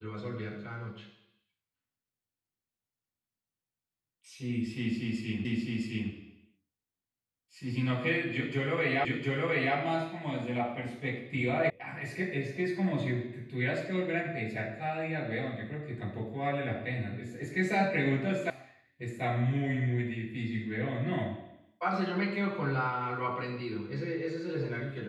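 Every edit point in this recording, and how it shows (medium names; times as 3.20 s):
5.45 s: repeat of the last 0.66 s
9.05 s: repeat of the last 0.71 s
11.70 s: sound stops dead
18.50 s: sound stops dead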